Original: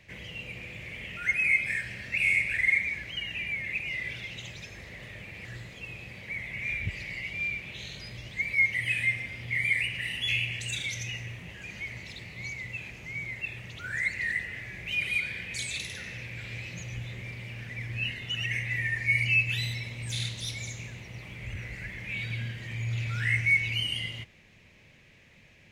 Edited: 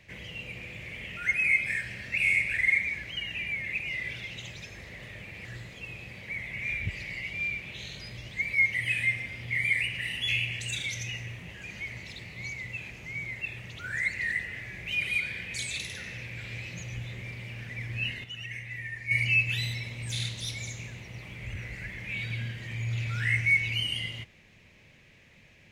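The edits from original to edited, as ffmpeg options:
-filter_complex "[0:a]asplit=3[s0][s1][s2];[s0]atrim=end=18.242[s3];[s1]atrim=start=18.238:end=19.112,asetpts=PTS-STARTPTS,volume=0.398[s4];[s2]atrim=start=19.108[s5];[s3][s4]acrossfade=d=0.004:c1=hsin:c2=hsin[s6];[s6][s5]acrossfade=d=0.004:c1=hsin:c2=hsin"

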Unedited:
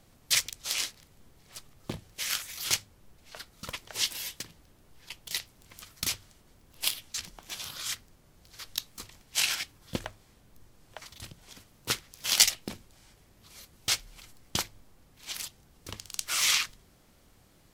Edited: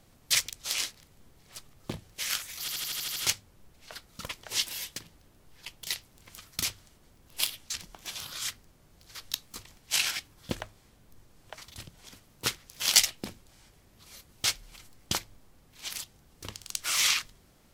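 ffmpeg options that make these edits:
-filter_complex "[0:a]asplit=8[s0][s1][s2][s3][s4][s5][s6][s7];[s0]atrim=end=2.682[s8];[s1]atrim=start=2.598:end=2.682[s9];[s2]atrim=start=2.598:end=2.682[s10];[s3]atrim=start=2.598:end=2.682[s11];[s4]atrim=start=2.598:end=2.682[s12];[s5]atrim=start=2.598:end=2.682[s13];[s6]atrim=start=2.598:end=2.682[s14];[s7]atrim=start=2.598[s15];[s8][s9]acrossfade=d=0.004:c1=hsin:c2=hsin[s16];[s16][s10]acrossfade=d=0.004:c1=hsin:c2=hsin[s17];[s17][s11]acrossfade=d=0.004:c1=hsin:c2=hsin[s18];[s18][s12]acrossfade=d=0.004:c1=hsin:c2=hsin[s19];[s19][s13]acrossfade=d=0.004:c1=hsin:c2=hsin[s20];[s20][s14]acrossfade=d=0.004:c1=hsin:c2=hsin[s21];[s21][s15]acrossfade=d=0.004:c1=hsin:c2=hsin"

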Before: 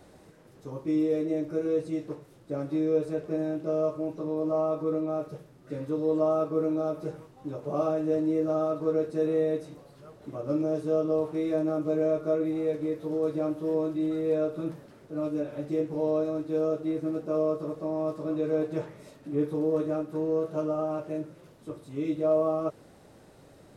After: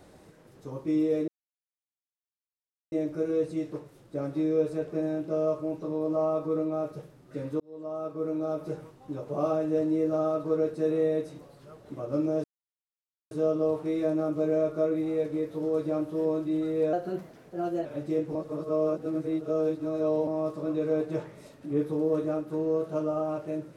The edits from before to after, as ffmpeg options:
-filter_complex "[0:a]asplit=8[s0][s1][s2][s3][s4][s5][s6][s7];[s0]atrim=end=1.28,asetpts=PTS-STARTPTS,afade=t=out:st=1.276:d=0.004:c=hsin,apad=pad_dur=1.64[s8];[s1]atrim=start=1.28:end=5.96,asetpts=PTS-STARTPTS,afade=t=in:d=0.004:c=hsin,afade=t=out:st=4.676:d=0.004:c=hsin[s9];[s2]atrim=start=5.96:end=10.8,asetpts=PTS-STARTPTS,afade=t=in:d=1.07,afade=t=out:st=4.836:d=0.004:c=hsin,apad=pad_dur=0.87[s10];[s3]atrim=start=10.8:end=14.424,asetpts=PTS-STARTPTS,afade=t=in:d=0.004:c=hsin[s11];[s4]atrim=start=14.42:end=15.47,asetpts=PTS-STARTPTS,asetrate=50274,aresample=44100,atrim=end_sample=40618,asetpts=PTS-STARTPTS[s12];[s5]atrim=start=15.466:end=15.972[s13];[s6]atrim=start=15.968:end=17.892,asetpts=PTS-STARTPTS,areverse[s14];[s7]atrim=start=17.888[s15];[s8][s9][s10][s11]concat=n=4:v=0:a=1[s16];[s16][s12]acrossfade=d=0.004:c1=hsin:c2=hsin[s17];[s17][s13]acrossfade=d=0.004:c1=hsin:c2=hsin[s18];[s18][s14]acrossfade=d=0.004:c1=hsin:c2=hsin[s19];[s19][s15]acrossfade=d=0.004:c1=hsin:c2=hsin"

